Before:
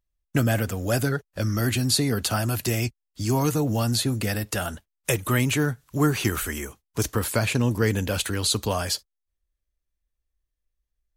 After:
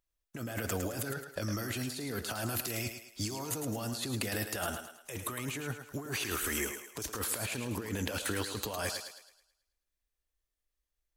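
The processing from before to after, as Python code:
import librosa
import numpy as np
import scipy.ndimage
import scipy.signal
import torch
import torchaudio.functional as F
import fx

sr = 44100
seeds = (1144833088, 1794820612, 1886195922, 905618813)

y = fx.bass_treble(x, sr, bass_db=-8, treble_db=1)
y = fx.over_compress(y, sr, threshold_db=-32.0, ratio=-1.0)
y = fx.echo_thinned(y, sr, ms=108, feedback_pct=43, hz=310.0, wet_db=-7.0)
y = y * librosa.db_to_amplitude(-5.0)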